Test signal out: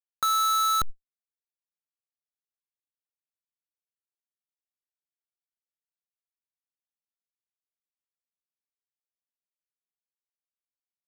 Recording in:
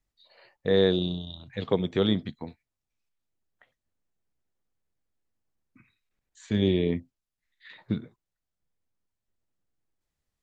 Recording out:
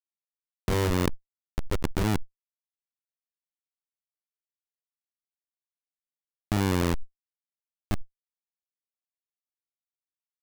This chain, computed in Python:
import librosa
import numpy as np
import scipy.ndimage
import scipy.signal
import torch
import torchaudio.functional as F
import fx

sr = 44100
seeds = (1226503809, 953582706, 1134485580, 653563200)

y = fx.schmitt(x, sr, flips_db=-20.5)
y = fx.env_flatten(y, sr, amount_pct=100)
y = y * librosa.db_to_amplitude(6.5)